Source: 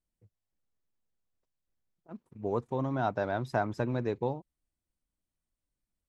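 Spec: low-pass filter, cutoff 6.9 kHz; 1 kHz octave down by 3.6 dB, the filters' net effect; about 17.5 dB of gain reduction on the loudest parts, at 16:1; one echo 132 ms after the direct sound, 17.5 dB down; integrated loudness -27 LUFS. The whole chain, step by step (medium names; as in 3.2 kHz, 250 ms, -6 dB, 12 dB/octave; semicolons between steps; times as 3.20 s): low-pass 6.9 kHz; peaking EQ 1 kHz -5.5 dB; compression 16:1, threshold -44 dBFS; delay 132 ms -17.5 dB; trim +23 dB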